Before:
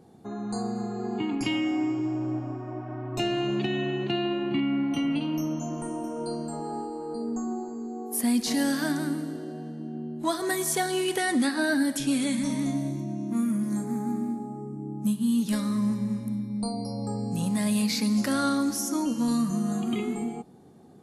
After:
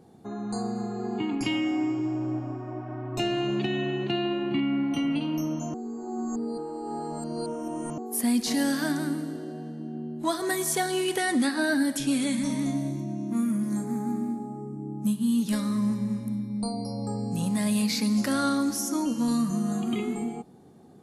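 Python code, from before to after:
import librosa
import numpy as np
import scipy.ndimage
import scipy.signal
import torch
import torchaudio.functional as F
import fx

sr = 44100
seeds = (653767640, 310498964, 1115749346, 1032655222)

y = fx.edit(x, sr, fx.reverse_span(start_s=5.74, length_s=2.24), tone=tone)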